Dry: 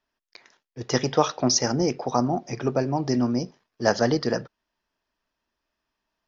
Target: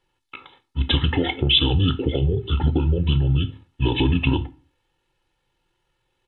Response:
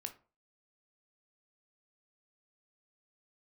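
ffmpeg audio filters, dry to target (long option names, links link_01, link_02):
-filter_complex "[0:a]equalizer=frequency=110:width=0.48:gain=4.5,aecho=1:1:1.3:0.88,asetrate=24750,aresample=44100,atempo=1.7818,alimiter=limit=-14dB:level=0:latency=1:release=87,acompressor=threshold=-23dB:ratio=4,asplit=2[link_01][link_02];[link_02]equalizer=frequency=250:width_type=o:width=1:gain=11,equalizer=frequency=500:width_type=o:width=1:gain=-12,equalizer=frequency=4000:width_type=o:width=1:gain=11[link_03];[1:a]atrim=start_sample=2205,asetrate=39690,aresample=44100[link_04];[link_03][link_04]afir=irnorm=-1:irlink=0,volume=4dB[link_05];[link_01][link_05]amix=inputs=2:normalize=0"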